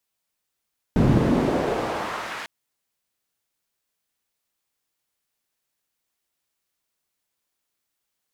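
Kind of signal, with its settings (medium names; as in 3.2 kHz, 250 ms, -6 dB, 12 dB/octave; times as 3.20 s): swept filtered noise pink, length 1.50 s bandpass, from 140 Hz, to 1.8 kHz, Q 1.1, exponential, gain ramp -19 dB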